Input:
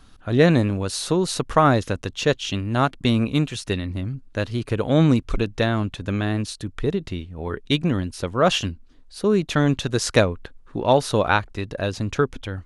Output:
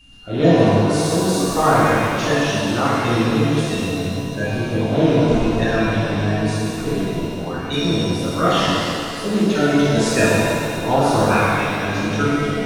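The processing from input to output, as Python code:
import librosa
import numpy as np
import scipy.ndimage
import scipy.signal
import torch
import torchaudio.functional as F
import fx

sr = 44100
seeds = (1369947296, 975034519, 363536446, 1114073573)

y = fx.spec_quant(x, sr, step_db=30)
y = y + 10.0 ** (-44.0 / 20.0) * np.sin(2.0 * np.pi * 2800.0 * np.arange(len(y)) / sr)
y = fx.rev_shimmer(y, sr, seeds[0], rt60_s=2.4, semitones=7, shimmer_db=-8, drr_db=-9.5)
y = y * librosa.db_to_amplitude(-6.5)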